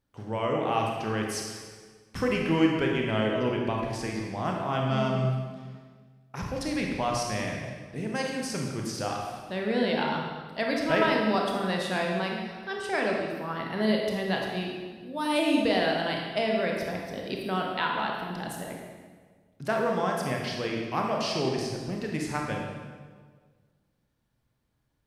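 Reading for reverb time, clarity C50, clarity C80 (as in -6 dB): 1.6 s, 1.0 dB, 3.0 dB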